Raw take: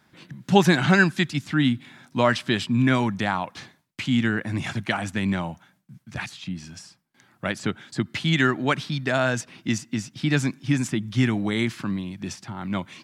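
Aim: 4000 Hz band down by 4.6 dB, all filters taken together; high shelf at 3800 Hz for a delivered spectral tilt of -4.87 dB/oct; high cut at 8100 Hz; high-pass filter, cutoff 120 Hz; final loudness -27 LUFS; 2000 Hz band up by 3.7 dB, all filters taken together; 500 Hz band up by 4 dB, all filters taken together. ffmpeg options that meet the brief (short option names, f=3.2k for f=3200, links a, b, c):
-af "highpass=120,lowpass=8.1k,equalizer=f=500:t=o:g=5.5,equalizer=f=2k:t=o:g=7,highshelf=f=3.8k:g=-7,equalizer=f=4k:t=o:g=-5,volume=-4.5dB"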